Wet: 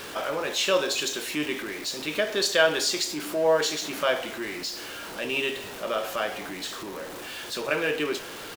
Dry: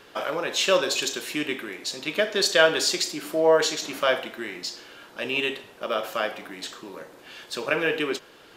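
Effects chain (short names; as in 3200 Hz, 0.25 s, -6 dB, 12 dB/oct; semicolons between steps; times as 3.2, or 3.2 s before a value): zero-crossing step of -31 dBFS; doubler 20 ms -13 dB; gain -3.5 dB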